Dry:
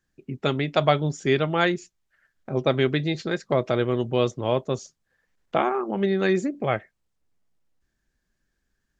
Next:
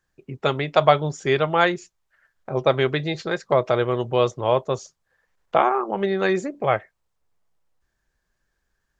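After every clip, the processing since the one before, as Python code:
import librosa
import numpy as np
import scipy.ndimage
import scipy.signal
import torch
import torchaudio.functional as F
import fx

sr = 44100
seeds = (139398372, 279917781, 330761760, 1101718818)

y = fx.graphic_eq(x, sr, hz=(250, 500, 1000), db=(-7, 3, 6))
y = y * librosa.db_to_amplitude(1.0)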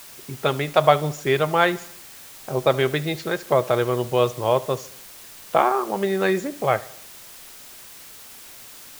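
y = fx.dmg_noise_colour(x, sr, seeds[0], colour='white', level_db=-43.0)
y = fx.echo_feedback(y, sr, ms=73, feedback_pct=53, wet_db=-20)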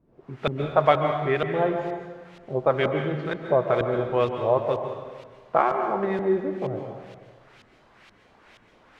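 y = fx.block_float(x, sr, bits=5)
y = fx.filter_lfo_lowpass(y, sr, shape='saw_up', hz=2.1, low_hz=210.0, high_hz=3200.0, q=1.3)
y = fx.rev_plate(y, sr, seeds[1], rt60_s=1.5, hf_ratio=0.85, predelay_ms=120, drr_db=5.0)
y = y * librosa.db_to_amplitude(-4.0)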